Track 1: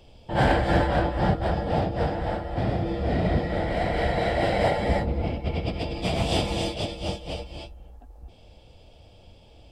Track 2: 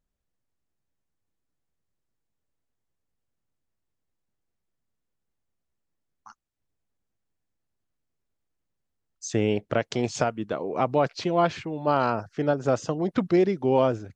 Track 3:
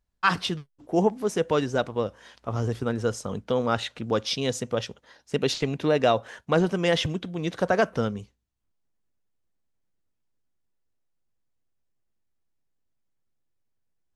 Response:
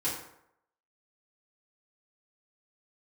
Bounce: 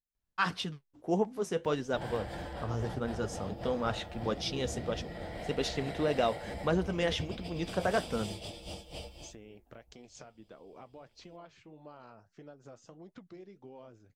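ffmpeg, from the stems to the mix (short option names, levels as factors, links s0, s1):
-filter_complex "[0:a]adelay=1650,volume=0.473[s0];[1:a]highshelf=f=6500:g=-6.5,acompressor=threshold=0.0398:ratio=6,volume=0.178,asplit=2[s1][s2];[2:a]adelay=150,volume=0.668[s3];[s2]apad=whole_len=501115[s4];[s0][s4]sidechaincompress=threshold=0.00251:ratio=8:attack=23:release=1110[s5];[s5][s1]amix=inputs=2:normalize=0,aemphasis=mode=production:type=50fm,alimiter=level_in=1.5:limit=0.0631:level=0:latency=1:release=210,volume=0.668,volume=1[s6];[s3][s6]amix=inputs=2:normalize=0,flanger=delay=3.9:depth=6.7:regen=-66:speed=1.6:shape=sinusoidal"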